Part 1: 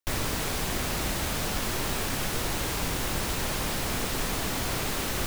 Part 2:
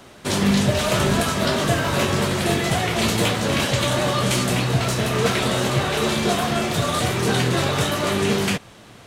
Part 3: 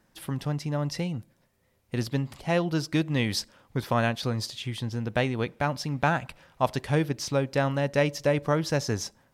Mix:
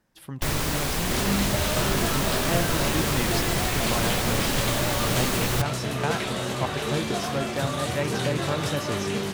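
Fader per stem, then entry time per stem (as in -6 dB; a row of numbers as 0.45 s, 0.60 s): +3.0 dB, -7.5 dB, -5.0 dB; 0.35 s, 0.85 s, 0.00 s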